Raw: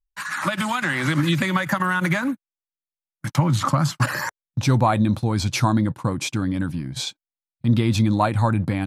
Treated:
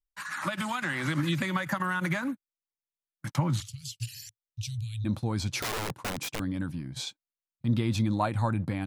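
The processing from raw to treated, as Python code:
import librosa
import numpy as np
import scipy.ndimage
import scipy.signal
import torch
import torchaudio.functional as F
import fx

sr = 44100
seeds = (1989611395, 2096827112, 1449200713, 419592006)

y = fx.cheby1_bandstop(x, sr, low_hz=110.0, high_hz=2800.0, order=4, at=(3.6, 5.04), fade=0.02)
y = fx.overflow_wrap(y, sr, gain_db=19.0, at=(5.6, 6.4))
y = F.gain(torch.from_numpy(y), -8.0).numpy()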